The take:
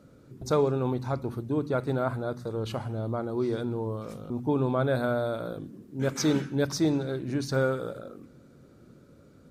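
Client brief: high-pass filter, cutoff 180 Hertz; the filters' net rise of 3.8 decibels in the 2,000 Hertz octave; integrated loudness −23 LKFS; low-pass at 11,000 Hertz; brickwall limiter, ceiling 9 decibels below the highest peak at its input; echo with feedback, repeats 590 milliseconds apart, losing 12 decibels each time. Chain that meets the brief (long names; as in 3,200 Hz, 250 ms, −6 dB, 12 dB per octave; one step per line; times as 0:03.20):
high-pass filter 180 Hz
low-pass filter 11,000 Hz
parametric band 2,000 Hz +6 dB
brickwall limiter −19 dBFS
repeating echo 590 ms, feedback 25%, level −12 dB
level +9 dB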